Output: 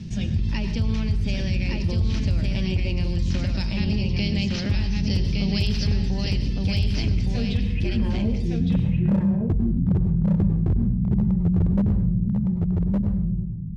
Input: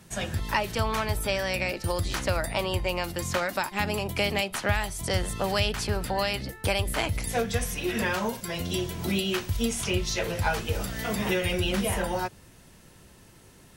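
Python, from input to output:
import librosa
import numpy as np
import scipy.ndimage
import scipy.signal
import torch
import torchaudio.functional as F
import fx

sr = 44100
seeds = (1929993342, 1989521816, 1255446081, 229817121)

y = fx.curve_eq(x, sr, hz=(210.0, 620.0, 1300.0, 2600.0, 9200.0), db=(0, -23, -28, -15, -27))
y = fx.filter_sweep_lowpass(y, sr, from_hz=5400.0, to_hz=160.0, start_s=7.4, end_s=8.81, q=3.2)
y = fx.high_shelf_res(y, sr, hz=6900.0, db=-10.5, q=3.0, at=(3.5, 6.01))
y = 10.0 ** (-20.0 / 20.0) * (np.abs((y / 10.0 ** (-20.0 / 20.0) + 3.0) % 4.0 - 2.0) - 1.0)
y = y + 10.0 ** (-3.5 / 20.0) * np.pad(y, (int(1163 * sr / 1000.0), 0))[:len(y)]
y = fx.rev_plate(y, sr, seeds[0], rt60_s=0.56, hf_ratio=0.85, predelay_ms=85, drr_db=9.5)
y = fx.env_flatten(y, sr, amount_pct=50)
y = F.gain(torch.from_numpy(y), 4.0).numpy()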